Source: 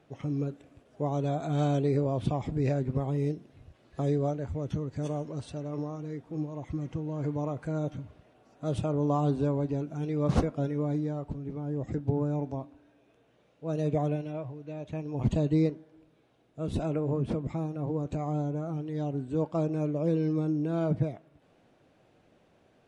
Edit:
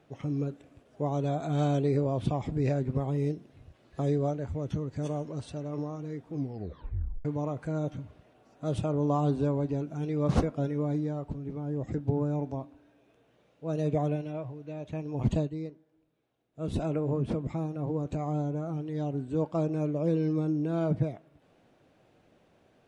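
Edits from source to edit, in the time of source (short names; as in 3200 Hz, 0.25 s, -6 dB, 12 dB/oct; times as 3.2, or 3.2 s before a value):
6.33 tape stop 0.92 s
15.38–16.65 dip -12 dB, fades 0.13 s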